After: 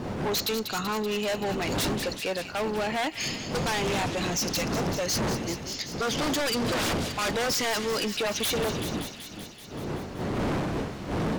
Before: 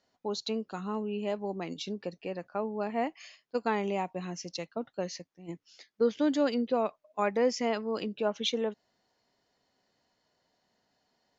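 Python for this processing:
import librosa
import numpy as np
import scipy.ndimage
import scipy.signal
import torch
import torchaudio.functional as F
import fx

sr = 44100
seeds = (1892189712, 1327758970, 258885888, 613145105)

p1 = fx.dmg_wind(x, sr, seeds[0], corner_hz=230.0, level_db=-28.0)
p2 = fx.tilt_eq(p1, sr, slope=3.5)
p3 = fx.fold_sine(p2, sr, drive_db=19, ceiling_db=-11.0)
p4 = p2 + (p3 * 10.0 ** (-3.0 / 20.0))
p5 = fx.echo_wet_highpass(p4, sr, ms=191, feedback_pct=73, hz=2200.0, wet_db=-9.5)
p6 = np.clip(10.0 ** (17.5 / 20.0) * p5, -1.0, 1.0) / 10.0 ** (17.5 / 20.0)
y = p6 * 10.0 ** (-7.5 / 20.0)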